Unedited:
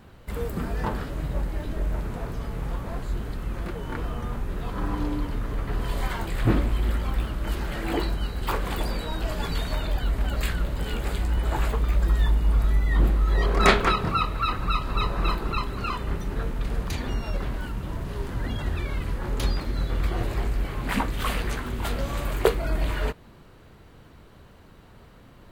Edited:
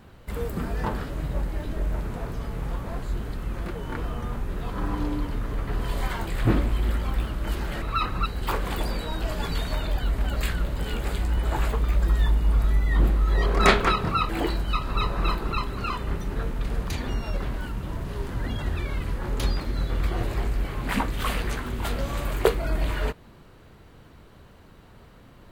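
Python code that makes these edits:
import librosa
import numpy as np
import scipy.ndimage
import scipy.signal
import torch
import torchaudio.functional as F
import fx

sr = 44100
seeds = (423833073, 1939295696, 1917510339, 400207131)

y = fx.edit(x, sr, fx.swap(start_s=7.82, length_s=0.44, other_s=14.29, other_length_s=0.44), tone=tone)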